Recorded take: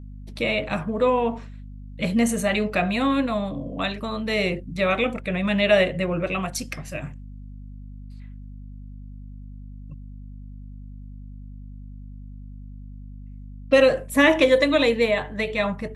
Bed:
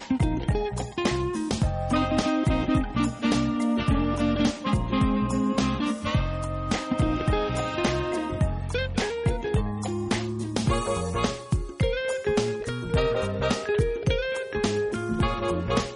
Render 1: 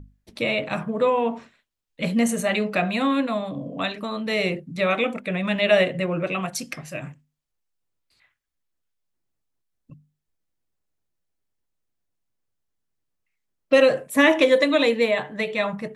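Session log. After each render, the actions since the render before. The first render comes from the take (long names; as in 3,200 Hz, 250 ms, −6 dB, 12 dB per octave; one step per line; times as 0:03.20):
mains-hum notches 50/100/150/200/250 Hz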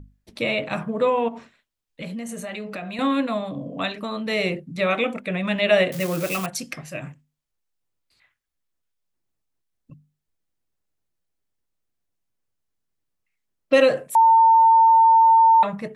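0:01.28–0:02.99: downward compressor 5 to 1, threshold −30 dBFS
0:05.92–0:06.46: spike at every zero crossing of −21 dBFS
0:14.15–0:15.63: beep over 903 Hz −10.5 dBFS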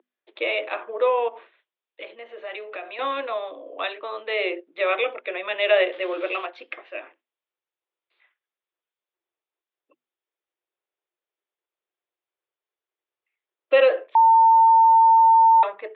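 Chebyshev band-pass filter 340–3,600 Hz, order 5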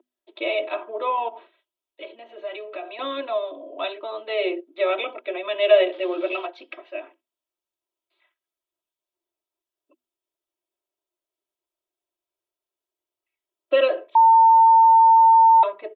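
parametric band 1,800 Hz −10 dB 1.1 octaves
comb filter 3.1 ms, depth 94%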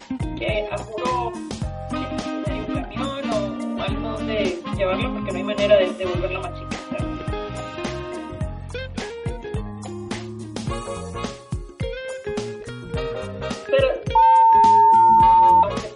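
mix in bed −3 dB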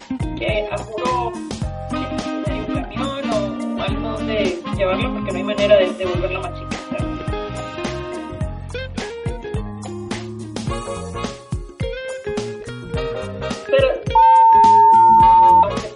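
level +3 dB
brickwall limiter −2 dBFS, peak gain reduction 0.5 dB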